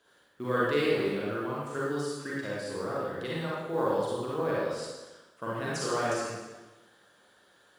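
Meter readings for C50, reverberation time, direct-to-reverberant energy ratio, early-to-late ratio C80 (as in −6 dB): −4.0 dB, 1.2 s, −7.5 dB, 0.5 dB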